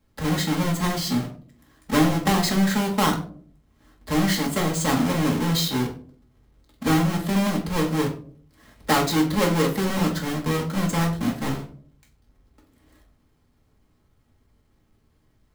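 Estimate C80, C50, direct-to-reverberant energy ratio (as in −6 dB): 14.0 dB, 10.0 dB, −1.5 dB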